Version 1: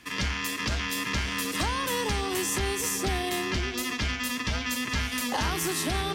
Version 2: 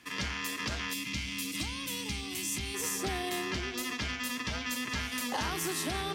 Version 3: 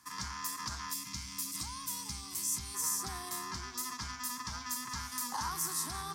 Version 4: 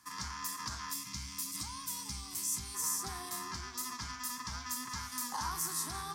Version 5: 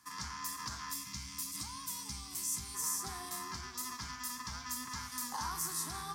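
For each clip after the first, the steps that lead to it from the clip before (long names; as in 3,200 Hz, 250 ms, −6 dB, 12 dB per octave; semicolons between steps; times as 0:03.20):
high-pass filter 99 Hz 6 dB per octave; gain on a spectral selection 0:00.93–0:02.75, 330–2,000 Hz −12 dB; level −4.5 dB
drawn EQ curve 160 Hz 0 dB, 590 Hz −14 dB, 1,000 Hz +10 dB, 2,800 Hz −12 dB, 5,100 Hz +7 dB, 8,800 Hz +9 dB; level −6.5 dB
flanger 0.6 Hz, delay 9.7 ms, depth 9.7 ms, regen +70%; level +3.5 dB
convolution reverb RT60 1.1 s, pre-delay 3 ms, DRR 13.5 dB; level −1.5 dB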